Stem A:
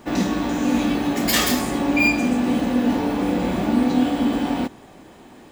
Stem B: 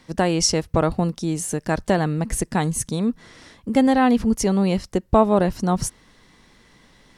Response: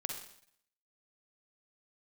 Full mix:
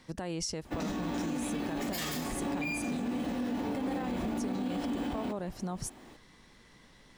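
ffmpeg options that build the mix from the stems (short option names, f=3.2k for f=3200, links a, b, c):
-filter_complex "[0:a]adelay=650,volume=-8dB[a];[1:a]acompressor=threshold=-31dB:ratio=2,volume=-5dB[b];[a][b]amix=inputs=2:normalize=0,alimiter=level_in=2dB:limit=-24dB:level=0:latency=1:release=64,volume=-2dB"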